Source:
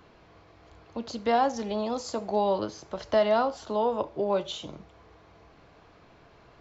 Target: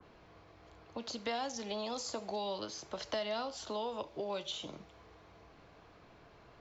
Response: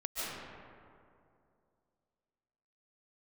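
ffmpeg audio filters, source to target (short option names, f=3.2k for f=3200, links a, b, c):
-filter_complex "[0:a]acrossover=split=170|560|2200[a][b][c][d];[a]acompressor=threshold=-56dB:ratio=4[e];[b]acompressor=threshold=-40dB:ratio=4[f];[c]acompressor=threshold=-38dB:ratio=4[g];[d]acompressor=threshold=-43dB:ratio=4[h];[e][f][g][h]amix=inputs=4:normalize=0,adynamicequalizer=threshold=0.00282:dfrequency=2000:dqfactor=0.7:tfrequency=2000:tqfactor=0.7:attack=5:release=100:ratio=0.375:range=3:mode=boostabove:tftype=highshelf,volume=-3.5dB"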